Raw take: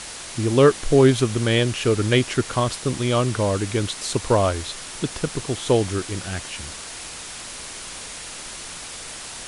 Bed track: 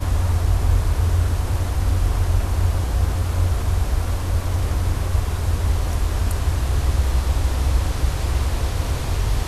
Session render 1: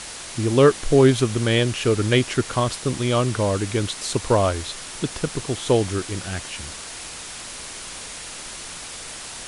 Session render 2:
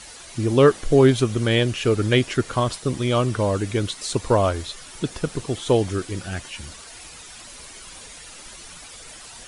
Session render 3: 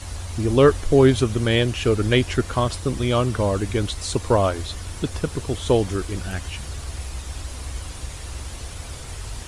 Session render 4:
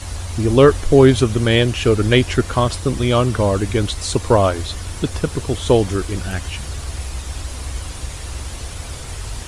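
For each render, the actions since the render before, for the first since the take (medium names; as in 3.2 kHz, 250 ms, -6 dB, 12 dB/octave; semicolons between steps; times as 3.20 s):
no audible change
noise reduction 10 dB, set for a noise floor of -36 dBFS
add bed track -13 dB
trim +4.5 dB; peak limiter -1 dBFS, peak gain reduction 1.5 dB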